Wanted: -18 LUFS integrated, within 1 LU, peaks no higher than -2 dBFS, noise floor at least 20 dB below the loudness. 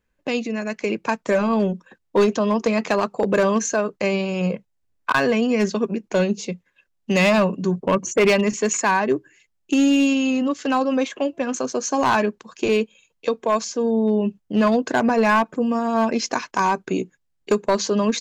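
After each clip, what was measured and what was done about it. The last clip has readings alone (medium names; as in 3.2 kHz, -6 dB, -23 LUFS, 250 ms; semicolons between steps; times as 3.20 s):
clipped samples 1.0%; clipping level -11.5 dBFS; loudness -21.0 LUFS; peak level -11.5 dBFS; loudness target -18.0 LUFS
-> clip repair -11.5 dBFS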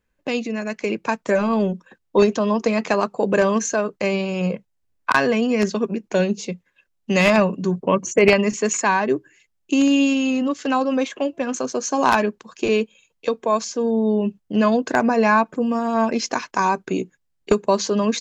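clipped samples 0.0%; loudness -20.5 LUFS; peak level -2.5 dBFS; loudness target -18.0 LUFS
-> trim +2.5 dB; peak limiter -2 dBFS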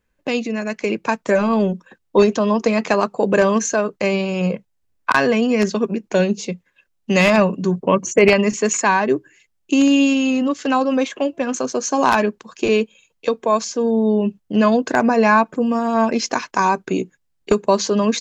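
loudness -18.5 LUFS; peak level -2.0 dBFS; noise floor -69 dBFS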